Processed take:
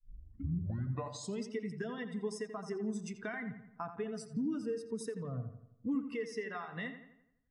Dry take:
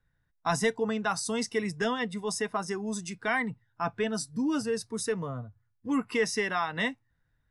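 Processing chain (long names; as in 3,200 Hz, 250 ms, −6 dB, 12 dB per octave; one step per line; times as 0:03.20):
turntable start at the beginning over 1.44 s
dynamic equaliser 930 Hz, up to −4 dB, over −46 dBFS, Q 2.9
downward compressor 12 to 1, threshold −39 dBFS, peak gain reduction 17.5 dB
on a send: feedback echo with a low-pass in the loop 85 ms, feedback 62%, low-pass 4,800 Hz, level −7 dB
on the sum: every bin expanded away from the loudest bin 1.5 to 1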